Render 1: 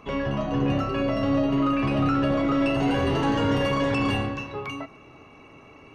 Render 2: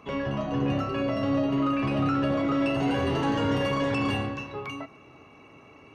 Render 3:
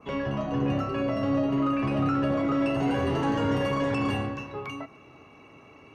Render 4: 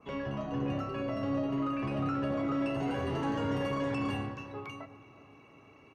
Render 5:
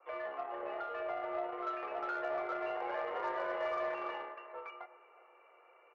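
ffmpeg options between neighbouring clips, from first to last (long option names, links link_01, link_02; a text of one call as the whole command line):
ffmpeg -i in.wav -af "highpass=62,volume=-2.5dB" out.wav
ffmpeg -i in.wav -af "adynamicequalizer=threshold=0.00355:dfrequency=3700:dqfactor=1.2:tfrequency=3700:tqfactor=1.2:attack=5:release=100:ratio=0.375:range=2.5:mode=cutabove:tftype=bell" out.wav
ffmpeg -i in.wav -filter_complex "[0:a]asplit=2[link_01][link_02];[link_02]adelay=369,lowpass=frequency=2000:poles=1,volume=-17dB,asplit=2[link_03][link_04];[link_04]adelay=369,lowpass=frequency=2000:poles=1,volume=0.52,asplit=2[link_05][link_06];[link_06]adelay=369,lowpass=frequency=2000:poles=1,volume=0.52,asplit=2[link_07][link_08];[link_08]adelay=369,lowpass=frequency=2000:poles=1,volume=0.52,asplit=2[link_09][link_10];[link_10]adelay=369,lowpass=frequency=2000:poles=1,volume=0.52[link_11];[link_01][link_03][link_05][link_07][link_09][link_11]amix=inputs=6:normalize=0,volume=-6.5dB" out.wav
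ffmpeg -i in.wav -af "highpass=frequency=420:width_type=q:width=0.5412,highpass=frequency=420:width_type=q:width=1.307,lowpass=frequency=2300:width_type=q:width=0.5176,lowpass=frequency=2300:width_type=q:width=0.7071,lowpass=frequency=2300:width_type=q:width=1.932,afreqshift=79,aeval=exprs='0.0562*(cos(1*acos(clip(val(0)/0.0562,-1,1)))-cos(1*PI/2))+0.00158*(cos(7*acos(clip(val(0)/0.0562,-1,1)))-cos(7*PI/2))':channel_layout=same" out.wav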